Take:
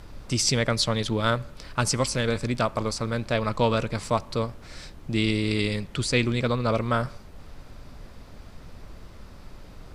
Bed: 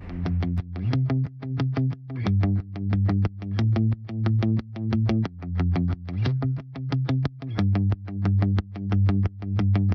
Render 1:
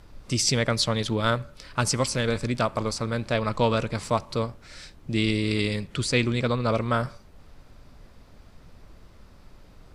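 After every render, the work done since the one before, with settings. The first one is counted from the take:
noise reduction from a noise print 6 dB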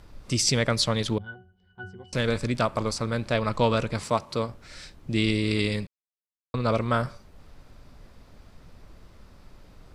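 0:01.18–0:02.13: resonances in every octave F#, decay 0.3 s
0:04.04–0:04.49: high-pass filter 130 Hz 6 dB per octave
0:05.87–0:06.54: silence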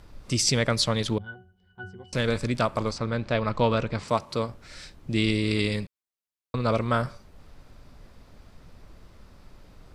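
0:02.91–0:04.08: high-frequency loss of the air 98 metres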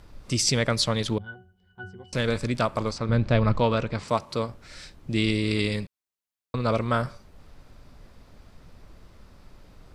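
0:03.09–0:03.59: low-shelf EQ 220 Hz +11.5 dB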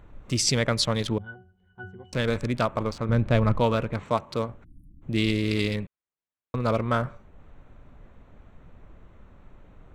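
adaptive Wiener filter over 9 samples
0:04.64–0:05.02: time-frequency box erased 330–8,900 Hz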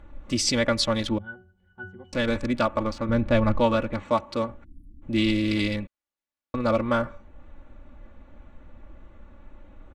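high-shelf EQ 8,400 Hz −9 dB
comb filter 3.5 ms, depth 73%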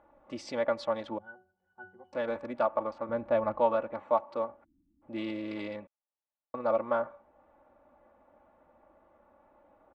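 resonant band-pass 750 Hz, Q 1.9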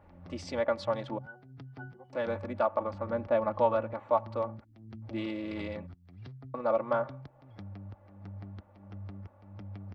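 mix in bed −22.5 dB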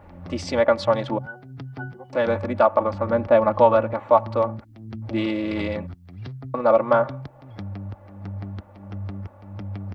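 level +11 dB
brickwall limiter −3 dBFS, peak gain reduction 1 dB

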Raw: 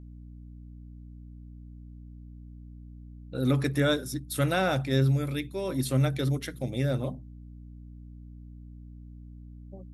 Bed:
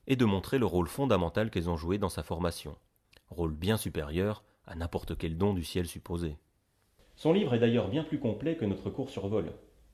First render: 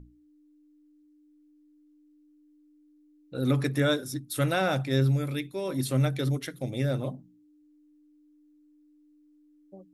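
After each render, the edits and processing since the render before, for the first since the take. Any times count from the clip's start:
mains-hum notches 60/120/180/240 Hz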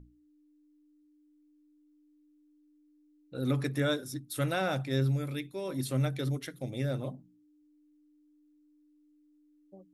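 level −4.5 dB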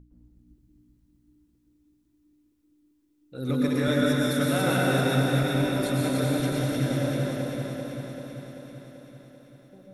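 feedback delay that plays each chunk backwards 194 ms, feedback 79%, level −4 dB
dense smooth reverb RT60 2.2 s, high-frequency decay 0.85×, pre-delay 100 ms, DRR −4 dB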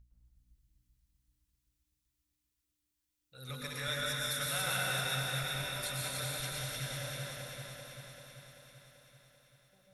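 guitar amp tone stack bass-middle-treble 10-0-10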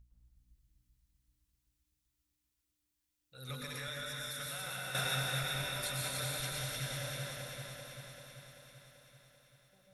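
0:03.54–0:04.95: downward compressor, threshold −38 dBFS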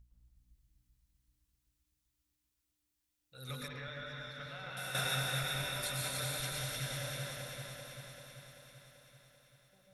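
0:03.68–0:04.77: high-frequency loss of the air 260 metres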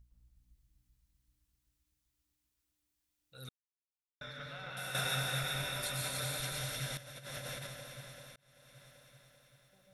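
0:03.49–0:04.21: silence
0:06.97–0:07.67: compressor whose output falls as the input rises −45 dBFS, ratio −0.5
0:08.36–0:08.84: fade in

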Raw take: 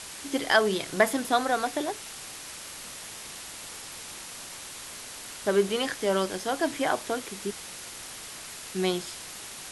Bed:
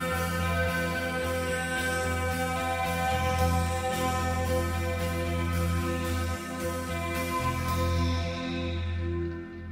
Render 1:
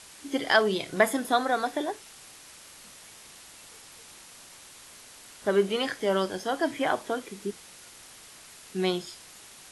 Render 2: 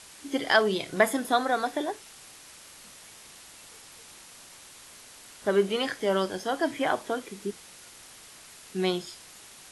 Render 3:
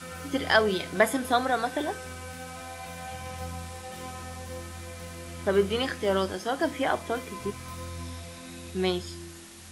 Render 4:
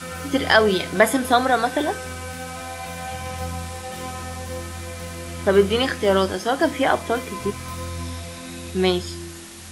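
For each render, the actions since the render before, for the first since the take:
noise reduction from a noise print 8 dB
no processing that can be heard
mix in bed −11.5 dB
level +7.5 dB; brickwall limiter −3 dBFS, peak gain reduction 2.5 dB

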